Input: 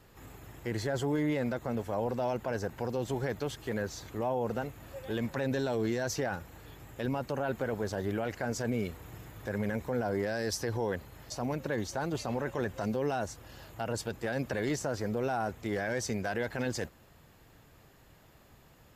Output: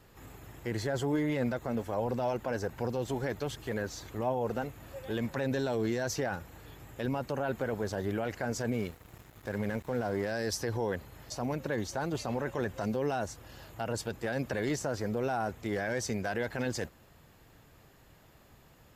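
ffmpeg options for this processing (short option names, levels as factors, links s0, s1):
-filter_complex "[0:a]asplit=3[s0][s1][s2];[s0]afade=t=out:st=1.12:d=0.02[s3];[s1]aphaser=in_gain=1:out_gain=1:delay=4.2:decay=0.24:speed=1.4:type=triangular,afade=t=in:st=1.12:d=0.02,afade=t=out:st=4.64:d=0.02[s4];[s2]afade=t=in:st=4.64:d=0.02[s5];[s3][s4][s5]amix=inputs=3:normalize=0,asettb=1/sr,asplit=3[s6][s7][s8];[s6]atrim=end=8.734[s9];[s7]atrim=start=8.73:end=10.32,asetpts=PTS-STARTPTS,afade=t=in:d=0.004:c=qsin,afade=t=out:st=1.586:d=0.004:c=qsin,aeval=exprs='sgn(val(0))*max(abs(val(0))-0.00335,0)':c=same[s10];[s8]atrim=start=10.316[s11];[s9][s10]acrossfade=d=0.004:c1=hsin:c2=qsin[s12];[s12][s11]acrossfade=d=0.004:c1=qsin:c2=hsin"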